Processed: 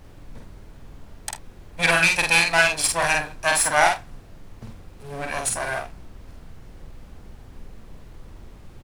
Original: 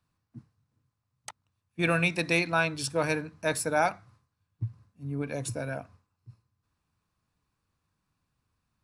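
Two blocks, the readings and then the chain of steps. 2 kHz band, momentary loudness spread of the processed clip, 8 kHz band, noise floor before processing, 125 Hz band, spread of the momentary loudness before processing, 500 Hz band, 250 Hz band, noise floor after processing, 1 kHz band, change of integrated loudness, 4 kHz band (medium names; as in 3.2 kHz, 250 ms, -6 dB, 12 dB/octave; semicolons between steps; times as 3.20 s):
+10.5 dB, 19 LU, +14.0 dB, -82 dBFS, -1.5 dB, 20 LU, +3.5 dB, -3.0 dB, -46 dBFS, +9.0 dB, +9.0 dB, +12.5 dB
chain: comb filter that takes the minimum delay 1.2 ms; wow and flutter 17 cents; peaking EQ 9.2 kHz +10.5 dB 0.63 oct; in parallel at -11 dB: word length cut 8-bit, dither none; on the sum: frequency weighting A; added noise brown -48 dBFS; on a send: early reflections 47 ms -3 dB, 78 ms -16.5 dB; on the sum: trim +6.5 dB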